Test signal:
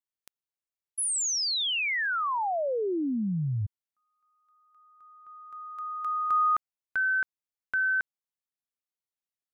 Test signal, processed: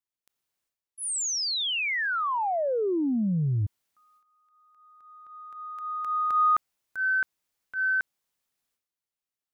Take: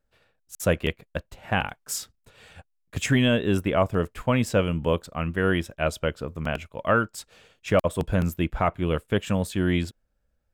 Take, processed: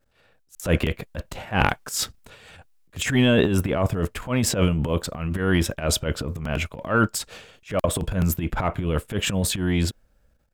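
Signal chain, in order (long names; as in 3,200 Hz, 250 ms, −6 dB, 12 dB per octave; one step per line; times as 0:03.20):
transient designer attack −12 dB, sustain +11 dB
speech leveller within 4 dB 2 s
level +2 dB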